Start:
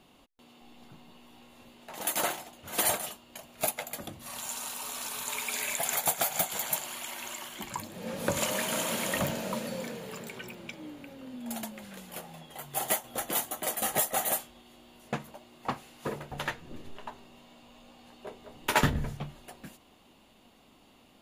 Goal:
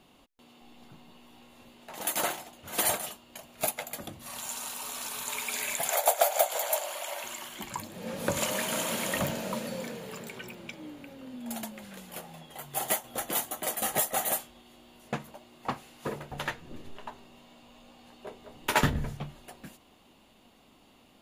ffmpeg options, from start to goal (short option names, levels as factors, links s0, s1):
-filter_complex "[0:a]asettb=1/sr,asplit=3[s0][s1][s2];[s0]atrim=end=5.894[s3];[s1]atrim=start=5.89:end=7.24,asetpts=PTS-STARTPTS,afade=t=in:d=0.004:c=qsin,afade=t=out:st=1.346:d=0.004:c=qsin,highpass=f=580:t=q:w=4.9[s4];[s2]atrim=start=7.236[s5];[s3][s4]acrossfade=d=0.004:c1=hsin:c2=qsin[s6];[s6][s5]acrossfade=d=0.004:c1=qsin:c2=hsin"